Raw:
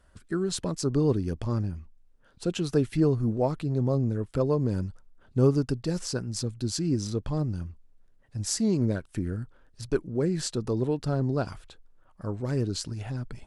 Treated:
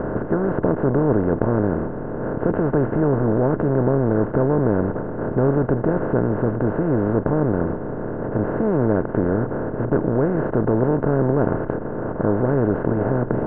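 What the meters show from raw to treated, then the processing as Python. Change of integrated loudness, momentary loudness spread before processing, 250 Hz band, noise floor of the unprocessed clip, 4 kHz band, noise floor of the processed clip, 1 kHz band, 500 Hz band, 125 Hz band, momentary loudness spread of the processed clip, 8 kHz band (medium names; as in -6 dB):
+7.5 dB, 11 LU, +8.5 dB, -60 dBFS, under -25 dB, -28 dBFS, +13.5 dB, +10.5 dB, +6.0 dB, 6 LU, under -40 dB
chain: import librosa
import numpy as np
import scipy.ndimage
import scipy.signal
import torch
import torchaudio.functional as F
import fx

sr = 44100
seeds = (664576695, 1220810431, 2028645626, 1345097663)

y = fx.bin_compress(x, sr, power=0.2)
y = scipy.signal.sosfilt(scipy.signal.ellip(4, 1.0, 70, 1700.0, 'lowpass', fs=sr, output='sos'), y)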